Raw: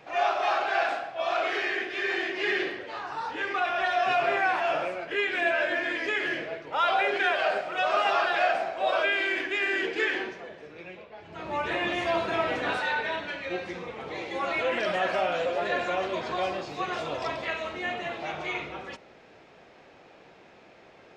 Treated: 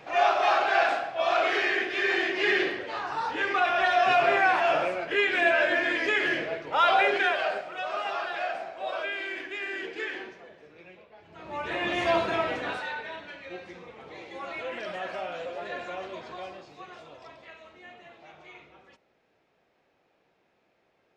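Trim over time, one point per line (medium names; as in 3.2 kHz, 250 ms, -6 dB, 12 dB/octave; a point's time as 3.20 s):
7.05 s +3 dB
7.82 s -7 dB
11.40 s -7 dB
12.11 s +3 dB
13.04 s -8 dB
16.09 s -8 dB
17.23 s -16.5 dB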